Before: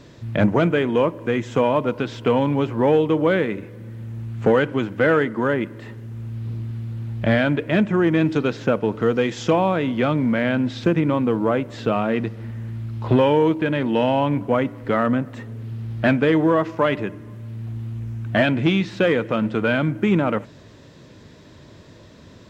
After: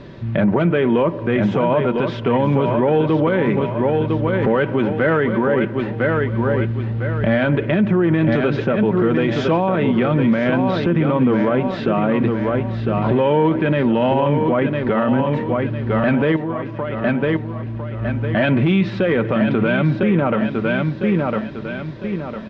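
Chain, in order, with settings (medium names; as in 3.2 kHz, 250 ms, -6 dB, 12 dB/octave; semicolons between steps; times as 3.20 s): distance through air 300 m; comb 5.2 ms, depth 36%; 16.36–18.01 s: compression 8:1, threshold -32 dBFS, peak gain reduction 17 dB; treble shelf 6.2 kHz +6 dB; feedback delay 1004 ms, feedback 38%, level -8 dB; peak limiter -17.5 dBFS, peak gain reduction 12 dB; trim +8.5 dB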